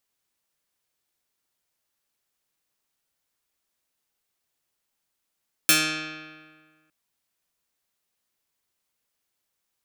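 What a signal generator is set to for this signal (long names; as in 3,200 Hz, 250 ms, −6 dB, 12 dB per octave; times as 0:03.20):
Karplus-Strong string D#3, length 1.21 s, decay 1.66 s, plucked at 0.16, medium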